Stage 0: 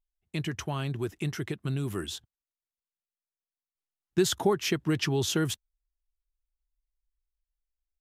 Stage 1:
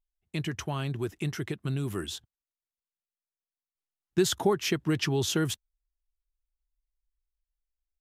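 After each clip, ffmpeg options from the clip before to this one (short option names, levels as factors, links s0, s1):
-af anull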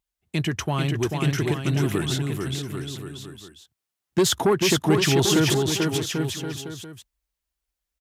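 -filter_complex "[0:a]asplit=2[s0][s1];[s1]aeval=exprs='0.237*sin(PI/2*2.51*val(0)/0.237)':c=same,volume=0.376[s2];[s0][s2]amix=inputs=2:normalize=0,highpass=61,aecho=1:1:440|792|1074|1299|1479:0.631|0.398|0.251|0.158|0.1"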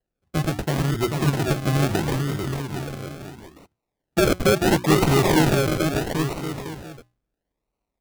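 -af "bandreject=f=60:t=h:w=6,bandreject=f=120:t=h:w=6,bandreject=f=180:t=h:w=6,bandreject=f=240:t=h:w=6,bandreject=f=300:t=h:w=6,bandreject=f=360:t=h:w=6,acrusher=samples=37:mix=1:aa=0.000001:lfo=1:lforange=22.2:lforate=0.74,volume=1.26"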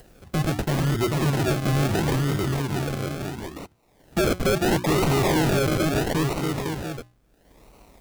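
-filter_complex "[0:a]asplit=2[s0][s1];[s1]acompressor=mode=upward:threshold=0.1:ratio=2.5,volume=1[s2];[s0][s2]amix=inputs=2:normalize=0,volume=5.31,asoftclip=hard,volume=0.188,volume=0.631"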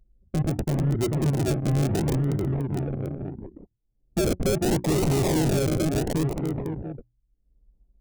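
-filter_complex "[0:a]anlmdn=63.1,equalizer=f=1300:w=0.89:g=-11.5,acrossover=split=2100[s0][s1];[s1]acrusher=bits=4:mix=0:aa=0.000001[s2];[s0][s2]amix=inputs=2:normalize=0"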